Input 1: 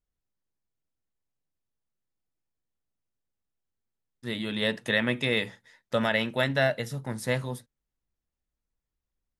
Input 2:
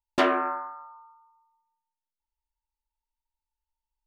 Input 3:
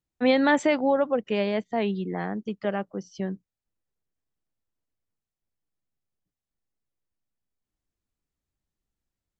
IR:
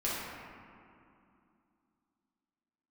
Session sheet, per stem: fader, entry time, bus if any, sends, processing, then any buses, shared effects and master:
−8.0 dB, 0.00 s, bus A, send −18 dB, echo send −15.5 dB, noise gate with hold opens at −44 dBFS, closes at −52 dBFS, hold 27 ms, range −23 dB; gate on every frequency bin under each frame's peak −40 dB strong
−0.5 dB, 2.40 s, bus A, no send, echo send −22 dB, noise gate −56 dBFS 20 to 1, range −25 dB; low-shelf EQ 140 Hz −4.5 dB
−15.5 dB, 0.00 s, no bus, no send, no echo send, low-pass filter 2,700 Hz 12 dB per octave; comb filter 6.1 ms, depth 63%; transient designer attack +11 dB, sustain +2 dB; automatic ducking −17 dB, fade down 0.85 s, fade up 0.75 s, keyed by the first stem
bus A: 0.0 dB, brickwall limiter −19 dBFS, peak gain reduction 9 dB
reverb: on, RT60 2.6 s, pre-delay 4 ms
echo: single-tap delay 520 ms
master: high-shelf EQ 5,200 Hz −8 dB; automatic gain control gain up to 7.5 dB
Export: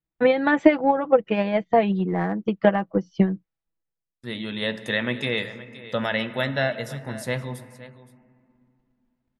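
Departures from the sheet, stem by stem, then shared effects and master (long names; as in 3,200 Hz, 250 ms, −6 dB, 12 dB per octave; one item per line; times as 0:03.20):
stem 2: muted
stem 3 −15.5 dB → −4.5 dB
master: missing high-shelf EQ 5,200 Hz −8 dB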